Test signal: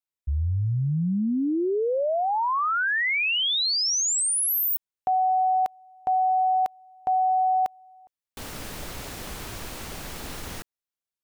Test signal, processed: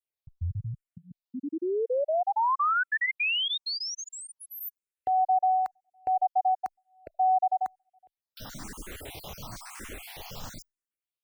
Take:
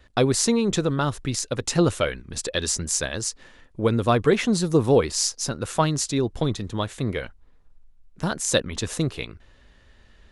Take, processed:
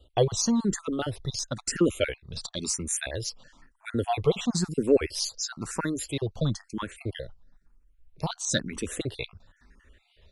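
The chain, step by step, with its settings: random spectral dropouts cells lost 39%; endless phaser +1 Hz

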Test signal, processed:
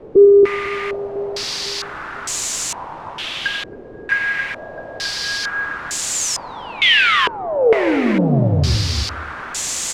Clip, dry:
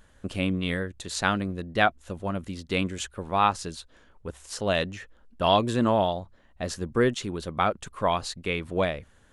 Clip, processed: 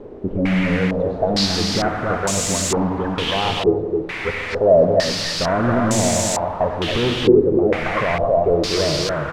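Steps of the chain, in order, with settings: treble ducked by the level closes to 530 Hz, closed at -24 dBFS; spectral noise reduction 9 dB; low shelf 310 Hz +4.5 dB; limiter -23.5 dBFS; sample leveller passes 2; requantised 6-bit, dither triangular; loudspeakers at several distances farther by 31 m -12 dB, 94 m -4 dB; non-linear reverb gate 0.32 s flat, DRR 6.5 dB; stepped low-pass 2.2 Hz 420–7200 Hz; gain +7.5 dB

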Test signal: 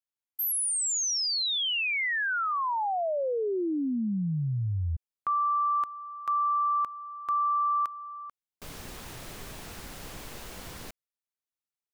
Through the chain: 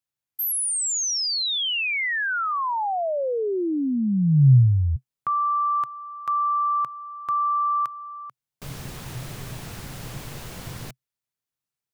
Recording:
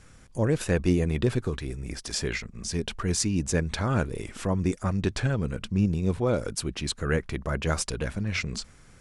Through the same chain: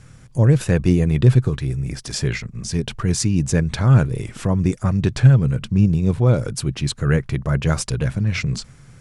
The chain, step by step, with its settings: bell 130 Hz +13.5 dB 0.68 oct; gain +3.5 dB

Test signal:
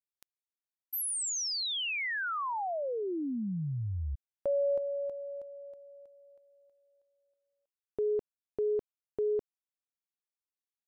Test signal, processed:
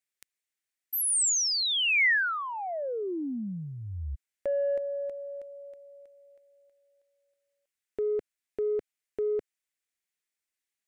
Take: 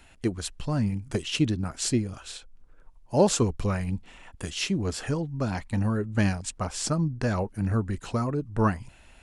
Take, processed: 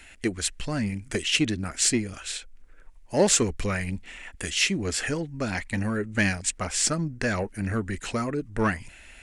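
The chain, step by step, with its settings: in parallel at -8.5 dB: soft clip -25.5 dBFS; on the sum: graphic EQ 125/1000/2000/8000 Hz -8/-6/+10/+6 dB

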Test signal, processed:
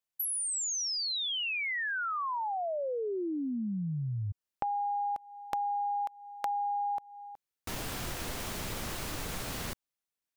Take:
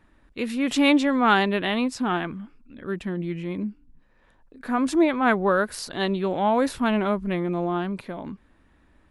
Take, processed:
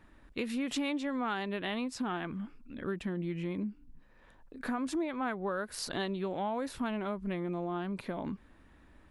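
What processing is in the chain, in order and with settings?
compressor 6:1, threshold -32 dBFS

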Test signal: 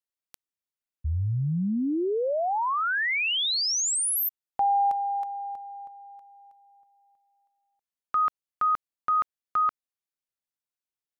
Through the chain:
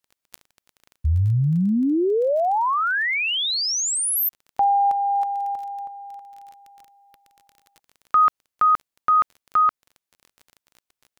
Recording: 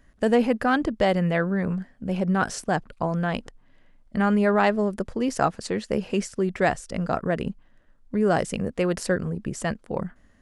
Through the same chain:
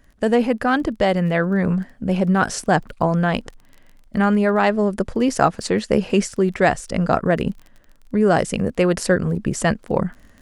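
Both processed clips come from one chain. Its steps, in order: vocal rider within 3 dB 0.5 s; crackle 21/s -40 dBFS; gain +5.5 dB

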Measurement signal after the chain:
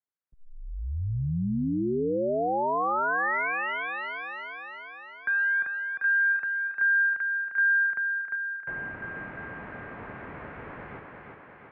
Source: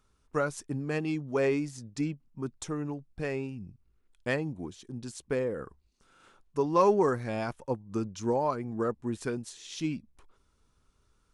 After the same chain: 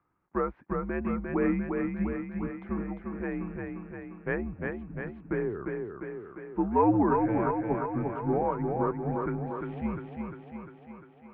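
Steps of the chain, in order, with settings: thinning echo 0.35 s, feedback 66%, high-pass 190 Hz, level -3.5 dB; mistuned SSB -93 Hz 160–2200 Hz

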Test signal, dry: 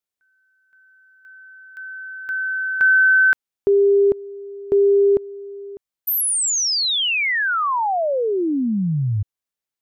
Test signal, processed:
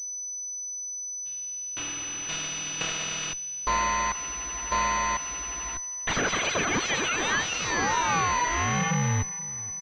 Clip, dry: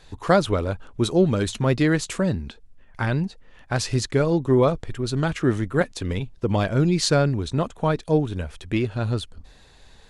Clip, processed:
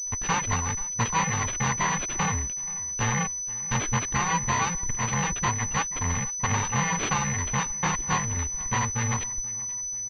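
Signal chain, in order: FFT order left unsorted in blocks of 128 samples; gate -47 dBFS, range -31 dB; in parallel at -8 dB: Schmitt trigger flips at -32.5 dBFS; on the sum: bell 840 Hz -10 dB 1.8 oct; compressor 6:1, threshold -16 dBFS; reverb removal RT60 1.4 s; on a send: feedback echo 0.481 s, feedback 44%, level -20.5 dB; on the sum: pulse-width modulation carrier 6000 Hz; gain -1.5 dB

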